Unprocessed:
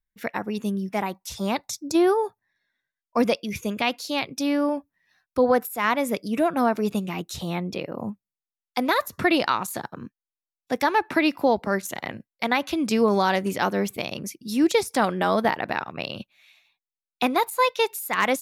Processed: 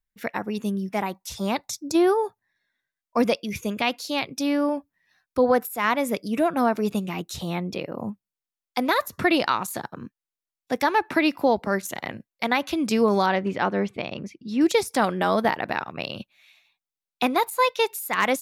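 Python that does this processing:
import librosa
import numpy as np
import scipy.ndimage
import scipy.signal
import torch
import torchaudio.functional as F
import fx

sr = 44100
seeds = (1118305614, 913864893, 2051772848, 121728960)

y = fx.lowpass(x, sr, hz=3000.0, slope=12, at=(13.26, 14.61))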